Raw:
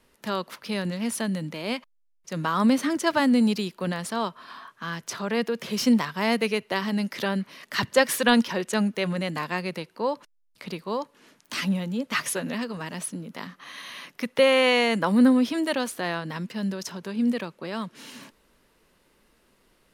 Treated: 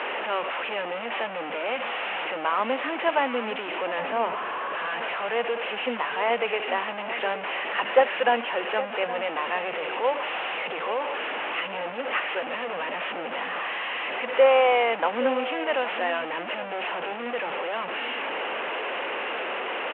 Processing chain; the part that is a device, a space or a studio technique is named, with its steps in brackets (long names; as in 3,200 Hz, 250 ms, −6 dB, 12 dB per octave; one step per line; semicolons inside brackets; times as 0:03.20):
digital answering machine (band-pass filter 310–3,400 Hz; linear delta modulator 16 kbit/s, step −25 dBFS; loudspeaker in its box 430–3,300 Hz, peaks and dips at 510 Hz +4 dB, 770 Hz +6 dB, 2,800 Hz +6 dB)
0:03.99–0:04.75: spectral tilt −2.5 dB per octave
slap from a distant wall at 140 metres, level −12 dB